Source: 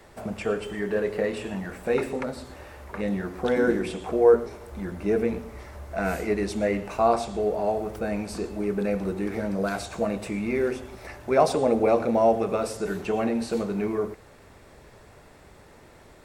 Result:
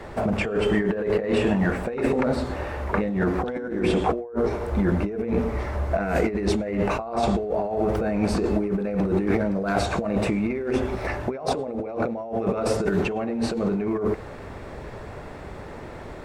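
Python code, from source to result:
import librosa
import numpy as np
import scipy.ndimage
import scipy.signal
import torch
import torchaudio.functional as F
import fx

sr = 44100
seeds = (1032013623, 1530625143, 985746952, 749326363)

y = fx.lowpass(x, sr, hz=1800.0, slope=6)
y = fx.over_compress(y, sr, threshold_db=-33.0, ratio=-1.0)
y = y * librosa.db_to_amplitude(8.0)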